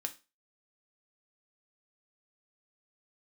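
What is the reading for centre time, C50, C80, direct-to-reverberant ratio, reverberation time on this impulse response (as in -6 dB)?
6 ms, 16.5 dB, 23.0 dB, 5.0 dB, 0.30 s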